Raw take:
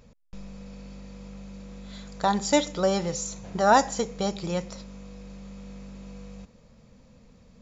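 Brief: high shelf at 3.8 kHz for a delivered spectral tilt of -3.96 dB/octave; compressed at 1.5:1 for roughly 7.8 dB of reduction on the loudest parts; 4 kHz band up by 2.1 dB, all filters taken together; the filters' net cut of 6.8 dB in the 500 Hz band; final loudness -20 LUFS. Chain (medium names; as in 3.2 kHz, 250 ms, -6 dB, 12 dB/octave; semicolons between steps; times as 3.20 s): peaking EQ 500 Hz -8.5 dB; treble shelf 3.8 kHz -6 dB; peaking EQ 4 kHz +6.5 dB; compression 1.5:1, threshold -38 dBFS; trim +17 dB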